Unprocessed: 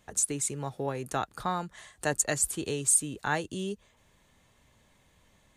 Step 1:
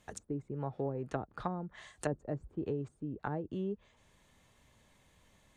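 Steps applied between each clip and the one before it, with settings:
treble cut that deepens with the level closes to 480 Hz, closed at −27.5 dBFS
level −2 dB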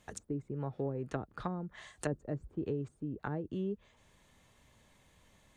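dynamic equaliser 790 Hz, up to −5 dB, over −51 dBFS, Q 1.4
level +1 dB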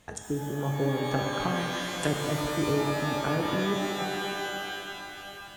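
reverb with rising layers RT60 3.2 s, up +12 semitones, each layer −2 dB, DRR 1.5 dB
level +6 dB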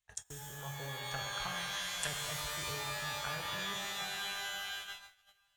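noise gate −38 dBFS, range −24 dB
guitar amp tone stack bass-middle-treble 10-0-10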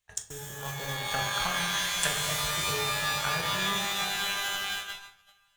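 in parallel at −7.5 dB: bit reduction 6 bits
on the sum: convolution reverb RT60 0.55 s, pre-delay 5 ms, DRR 6 dB
level +5.5 dB

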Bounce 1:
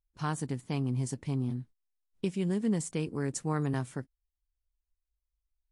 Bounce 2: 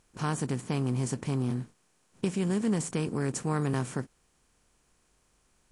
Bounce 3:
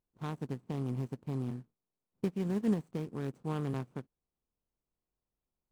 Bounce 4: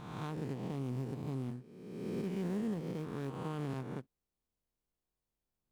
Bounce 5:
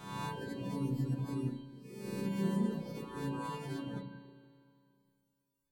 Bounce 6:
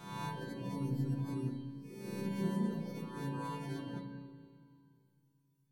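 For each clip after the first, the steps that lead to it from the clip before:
compressor on every frequency bin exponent 0.6
running median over 25 samples; expander for the loud parts 2.5 to 1, over −38 dBFS
peak hold with a rise ahead of every peak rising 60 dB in 1.32 s; brickwall limiter −26 dBFS, peak gain reduction 7 dB; level −3.5 dB
every partial snapped to a pitch grid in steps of 2 semitones; spring reverb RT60 2.4 s, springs 31/36 ms, chirp 25 ms, DRR −5 dB; reverb reduction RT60 1.7 s; level −1 dB
rectangular room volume 2,800 cubic metres, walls mixed, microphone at 0.77 metres; level −2 dB

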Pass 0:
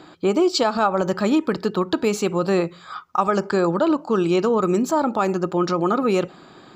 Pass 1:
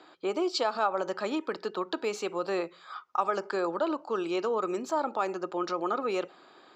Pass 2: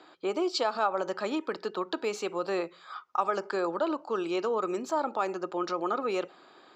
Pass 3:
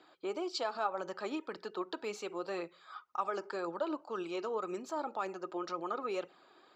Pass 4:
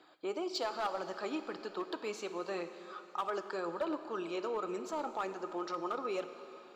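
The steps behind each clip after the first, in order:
three-way crossover with the lows and the highs turned down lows −21 dB, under 320 Hz, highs −12 dB, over 6,900 Hz; level −7.5 dB
no processing that can be heard
flanger 1.9 Hz, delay 0.3 ms, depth 2.9 ms, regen +56%; level −3 dB
gain into a clipping stage and back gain 28.5 dB; dense smooth reverb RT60 3.6 s, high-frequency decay 0.95×, DRR 9.5 dB

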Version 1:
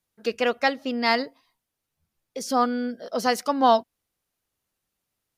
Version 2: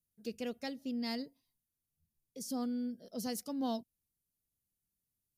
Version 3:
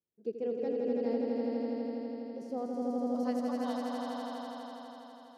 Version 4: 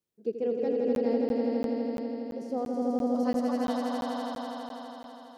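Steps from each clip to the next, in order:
drawn EQ curve 180 Hz 0 dB, 1,200 Hz −24 dB, 12,000 Hz +1 dB; level −4.5 dB
band-pass filter sweep 410 Hz → 5,200 Hz, 0:02.27–0:04.86; echo that builds up and dies away 82 ms, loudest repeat 5, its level −3 dB; level +8.5 dB
regular buffer underruns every 0.34 s, samples 512, zero, from 0:00.95; level +5 dB

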